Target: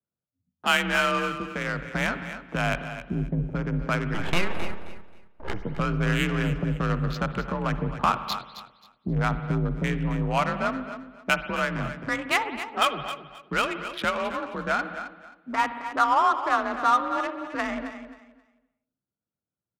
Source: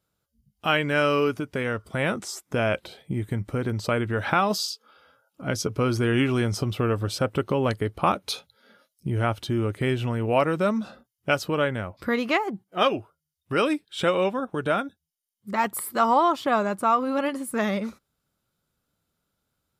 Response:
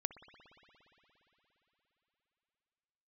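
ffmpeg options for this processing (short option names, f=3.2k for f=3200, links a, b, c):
-filter_complex "[0:a]afwtdn=0.0178,acrossover=split=150|770|4400[a][b][c][d];[a]aeval=exprs='0.0708*(cos(1*acos(clip(val(0)/0.0708,-1,1)))-cos(1*PI/2))+0.0282*(cos(2*acos(clip(val(0)/0.0708,-1,1)))-cos(2*PI/2))+0.0282*(cos(4*acos(clip(val(0)/0.0708,-1,1)))-cos(4*PI/2))':c=same[e];[b]acompressor=threshold=-40dB:ratio=6[f];[e][f][c][d]amix=inputs=4:normalize=0,afreqshift=39,asettb=1/sr,asplit=3[g][h][i];[g]atrim=end=4.144[j];[h]atrim=start=4.14:end=5.6,asetpts=PTS-STARTPTS,afade=t=in:d=0.004:c=qsin,afade=t=out:st=1.456:d=0.004:c=qsin,aeval=exprs='abs(val(0))':c=same[k];[i]atrim=start=5.596[l];[j][k]acrossfade=d=0.004:c1=hsin:c2=qsin[m];[m][l]acrossfade=d=0.004:c1=qsin:c2=hsin,adynamicsmooth=sensitivity=3.5:basefreq=1.3k,aecho=1:1:266|532|798:0.251|0.0578|0.0133[n];[1:a]atrim=start_sample=2205,afade=t=out:st=0.34:d=0.01,atrim=end_sample=15435[o];[n][o]afir=irnorm=-1:irlink=0,volume=4dB"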